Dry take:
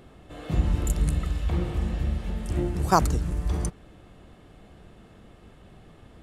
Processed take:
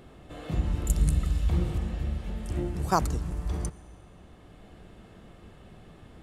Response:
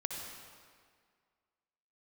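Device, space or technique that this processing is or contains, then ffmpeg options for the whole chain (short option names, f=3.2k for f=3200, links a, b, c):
ducked reverb: -filter_complex "[0:a]asplit=3[a][b][c];[1:a]atrim=start_sample=2205[d];[b][d]afir=irnorm=-1:irlink=0[e];[c]apad=whole_len=274475[f];[e][f]sidechaincompress=threshold=-37dB:ratio=8:attack=16:release=971,volume=-1.5dB[g];[a][g]amix=inputs=2:normalize=0,asettb=1/sr,asplit=3[h][i][j];[h]atrim=end=0.894[k];[i]atrim=start=0.89:end=1.78,asetpts=PTS-STARTPTS,afade=t=in:d=0.004:c=qsin,afade=t=out:st=0.886:d=0.004:c=qsin,bass=f=250:g=5,treble=f=4k:g=6[l];[j]atrim=start=1.776[m];[k][l]acrossfade=d=0.004:c1=hsin:c2=qsin[n];[n][m]acrossfade=d=0.004:c1=qsin:c2=hsin,volume=-5dB"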